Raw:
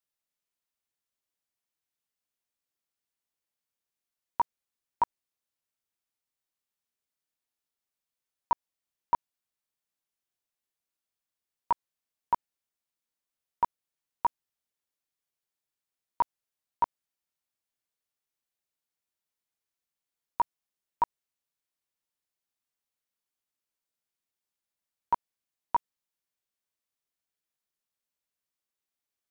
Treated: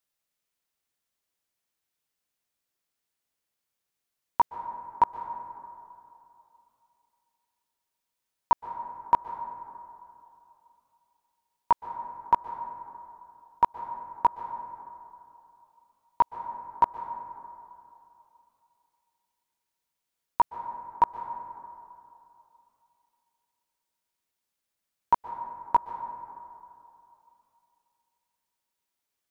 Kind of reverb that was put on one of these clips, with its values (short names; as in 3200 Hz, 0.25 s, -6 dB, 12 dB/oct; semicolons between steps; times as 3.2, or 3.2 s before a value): plate-style reverb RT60 2.8 s, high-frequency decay 0.35×, pre-delay 0.11 s, DRR 9.5 dB; gain +5 dB